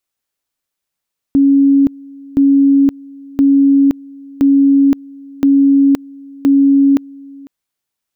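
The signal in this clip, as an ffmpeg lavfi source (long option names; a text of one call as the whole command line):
ffmpeg -f lavfi -i "aevalsrc='pow(10,(-6-25*gte(mod(t,1.02),0.52))/20)*sin(2*PI*277*t)':duration=6.12:sample_rate=44100" out.wav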